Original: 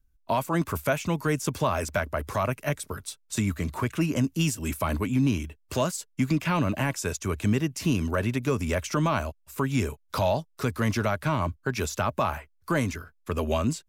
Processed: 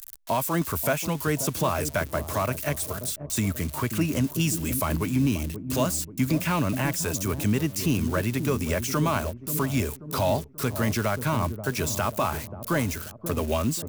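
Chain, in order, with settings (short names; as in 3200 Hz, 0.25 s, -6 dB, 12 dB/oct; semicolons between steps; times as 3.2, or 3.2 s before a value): switching spikes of -27 dBFS; on a send: dark delay 0.534 s, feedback 44%, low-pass 560 Hz, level -8 dB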